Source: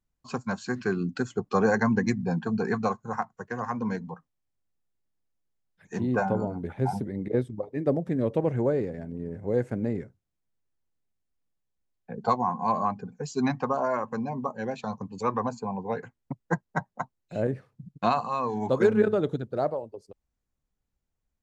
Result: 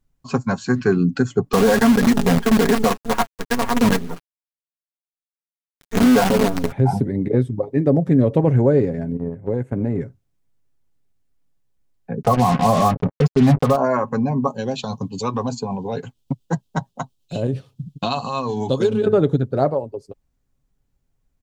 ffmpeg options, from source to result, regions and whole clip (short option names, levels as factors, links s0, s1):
-filter_complex "[0:a]asettb=1/sr,asplit=3[s0][s1][s2];[s0]atrim=end=1.534[s3];[s1]atrim=start=1.53:end=6.72,asetpts=PTS-STARTPTS,afade=t=in:d=0.004:c=qsin,afade=t=out:st=5.186:d=0.004:c=qsin,equalizer=f=140:t=o:w=0.28:g=-11.5,aecho=1:1:4.3:0.79,atrim=end_sample=228879,acrusher=bits=5:dc=4:mix=0:aa=0.000001[s4];[s2]atrim=start=6.716[s5];[s3][s4]acrossfade=d=0.004:c1=hsin:c2=qsin[s6];[s6][s5]acrossfade=d=0.004:c1=qsin:c2=hsin,asettb=1/sr,asplit=3[s7][s8][s9];[s7]atrim=end=9.174[s10];[s8]atrim=start=9.17:end=10.01,asetpts=PTS-STARTPTS,afade=t=in:d=0.004:c=qsin,afade=t=out:st=0.836:d=0.004:c=qsin,equalizer=f=5200:t=o:w=0.74:g=-9.5,acompressor=threshold=0.0501:ratio=16:attack=3.2:release=140:knee=1:detection=peak,agate=range=0.316:threshold=0.0178:ratio=16:release=100:detection=peak[s11];[s9]atrim=start=10.006[s12];[s10][s11]acrossfade=d=0.004:c1=hsin:c2=qsin[s13];[s13][s12]acrossfade=d=0.004:c1=qsin:c2=hsin,asettb=1/sr,asplit=3[s14][s15][s16];[s14]atrim=end=12.224[s17];[s15]atrim=start=12.22:end=13.76,asetpts=PTS-STARTPTS,afade=t=in:d=0.004:c=qsin,afade=t=out:st=1.536:d=0.004:c=qsin,tiltshelf=f=1300:g=7,aecho=1:1:1.6:0.44,atrim=end_sample=67914,acrusher=bits=4:mix=0:aa=0.5[s18];[s16]atrim=start=13.756[s19];[s17][s18]acrossfade=d=0.004:c1=hsin:c2=qsin[s20];[s20][s19]acrossfade=d=0.004:c1=qsin:c2=hsin,asettb=1/sr,asplit=3[s21][s22][s23];[s21]atrim=end=14.474[s24];[s22]atrim=start=14.47:end=19.06,asetpts=PTS-STARTPTS,afade=t=in:d=0.004:c=qsin,afade=t=out:st=4.586:d=0.004:c=qsin,highshelf=f=2500:t=q:w=3:g=8,acompressor=threshold=0.0355:ratio=2:attack=3.2:release=140:knee=1:detection=peak,tremolo=f=8.7:d=0.33[s25];[s23]atrim=start=19.056[s26];[s24][s25]acrossfade=d=0.004:c1=hsin:c2=qsin[s27];[s27][s26]acrossfade=d=0.004:c1=qsin:c2=hsin,lowshelf=f=410:g=6.5,aecho=1:1:7.3:0.35,alimiter=limit=0.224:level=0:latency=1:release=71,volume=2.11"